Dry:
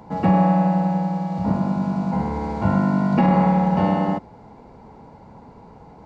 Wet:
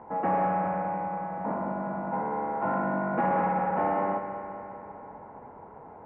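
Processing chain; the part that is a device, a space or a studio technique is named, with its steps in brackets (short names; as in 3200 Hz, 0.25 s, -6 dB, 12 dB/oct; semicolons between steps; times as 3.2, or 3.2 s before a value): aircraft cabin announcement (BPF 410–3900 Hz; soft clip -20.5 dBFS, distortion -13 dB; brown noise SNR 18 dB); HPF 110 Hz 12 dB/oct; LPF 1800 Hz 24 dB/oct; air absorption 51 m; analogue delay 0.199 s, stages 4096, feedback 68%, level -9 dB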